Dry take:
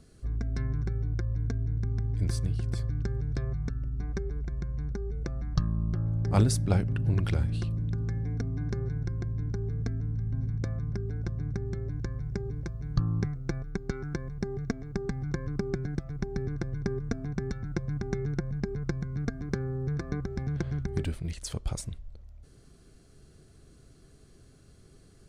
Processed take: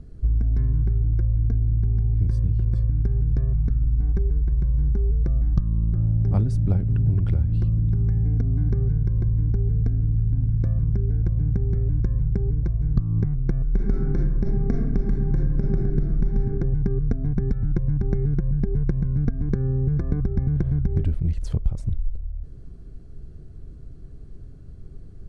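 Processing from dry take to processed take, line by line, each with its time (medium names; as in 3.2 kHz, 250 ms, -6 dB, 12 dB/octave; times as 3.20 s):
13.71–16.44 s: reverb throw, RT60 0.84 s, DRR -2 dB
whole clip: tilt EQ -4 dB/octave; compression, threshold -17 dBFS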